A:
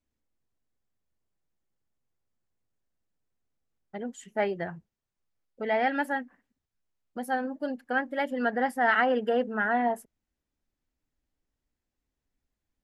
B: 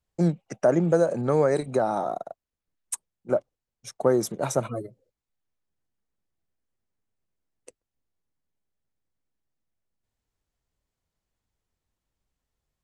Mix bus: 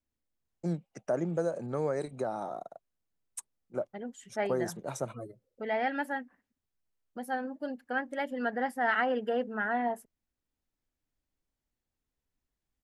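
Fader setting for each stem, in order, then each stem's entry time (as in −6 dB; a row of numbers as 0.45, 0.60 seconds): −4.5, −10.0 decibels; 0.00, 0.45 seconds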